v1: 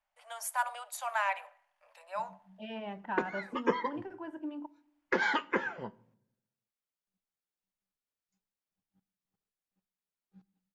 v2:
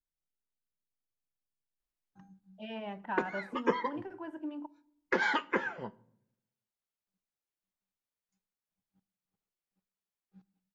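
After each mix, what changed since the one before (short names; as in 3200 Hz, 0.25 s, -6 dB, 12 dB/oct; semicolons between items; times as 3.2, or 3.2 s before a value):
first voice: muted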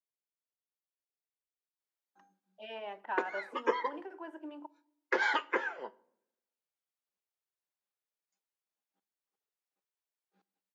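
master: add HPF 350 Hz 24 dB/oct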